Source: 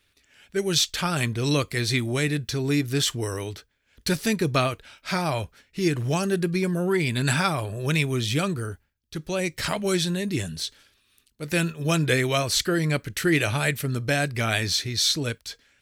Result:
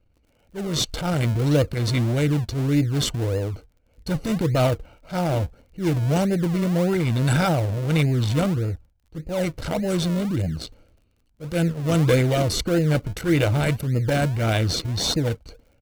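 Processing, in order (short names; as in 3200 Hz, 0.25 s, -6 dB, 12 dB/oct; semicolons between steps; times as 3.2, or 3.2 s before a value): Wiener smoothing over 25 samples; low shelf 65 Hz +10 dB; comb 1.4 ms, depth 62%; transient shaper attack -9 dB, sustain +5 dB; small resonant body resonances 330/480 Hz, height 11 dB, ringing for 40 ms; in parallel at -6.5 dB: decimation with a swept rate 38×, swing 100% 1.7 Hz; on the sum: crackle 35/s -48 dBFS; gain -2 dB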